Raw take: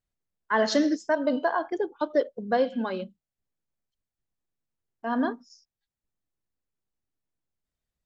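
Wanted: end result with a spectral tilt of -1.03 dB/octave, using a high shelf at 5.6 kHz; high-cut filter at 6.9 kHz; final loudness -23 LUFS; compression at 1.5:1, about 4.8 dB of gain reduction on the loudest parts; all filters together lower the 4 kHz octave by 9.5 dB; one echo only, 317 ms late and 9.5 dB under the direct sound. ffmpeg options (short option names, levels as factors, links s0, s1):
-af "lowpass=6900,equalizer=f=4000:t=o:g=-8.5,highshelf=f=5600:g=-6.5,acompressor=threshold=0.0251:ratio=1.5,aecho=1:1:317:0.335,volume=2.66"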